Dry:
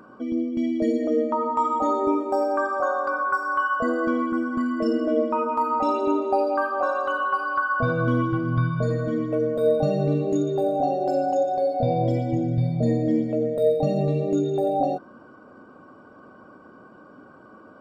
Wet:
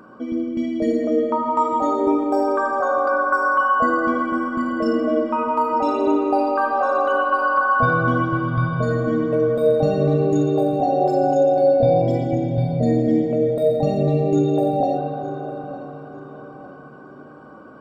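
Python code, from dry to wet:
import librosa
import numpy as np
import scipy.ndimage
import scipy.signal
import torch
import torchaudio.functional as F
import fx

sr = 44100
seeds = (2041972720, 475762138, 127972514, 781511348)

y = fx.echo_filtered(x, sr, ms=904, feedback_pct=40, hz=3400.0, wet_db=-14.0)
y = fx.rev_spring(y, sr, rt60_s=3.5, pass_ms=(38, 54), chirp_ms=65, drr_db=3.0)
y = F.gain(torch.from_numpy(y), 2.5).numpy()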